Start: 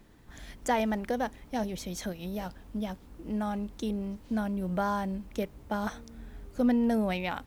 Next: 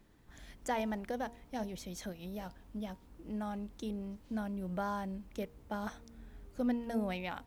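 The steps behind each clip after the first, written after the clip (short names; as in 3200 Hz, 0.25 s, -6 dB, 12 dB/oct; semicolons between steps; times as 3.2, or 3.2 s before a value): de-hum 235 Hz, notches 4; gain -7 dB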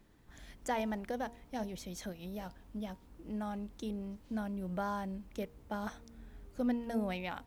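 nothing audible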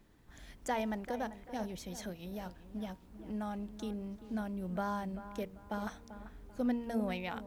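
dark delay 0.39 s, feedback 32%, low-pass 2500 Hz, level -13 dB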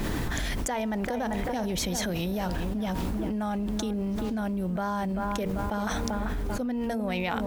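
fast leveller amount 100%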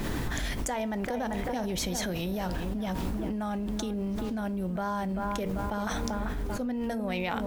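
reverb RT60 0.30 s, pre-delay 7 ms, DRR 14.5 dB; gain -2 dB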